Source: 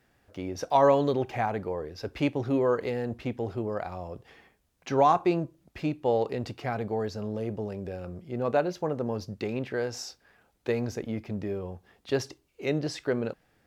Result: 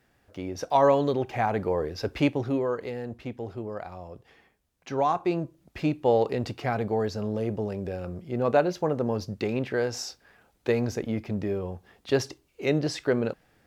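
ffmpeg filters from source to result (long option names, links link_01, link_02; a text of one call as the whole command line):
ffmpeg -i in.wav -af "volume=14dB,afade=type=in:start_time=1.31:duration=0.53:silence=0.473151,afade=type=out:start_time=1.84:duration=0.84:silence=0.298538,afade=type=in:start_time=5.14:duration=0.7:silence=0.446684" out.wav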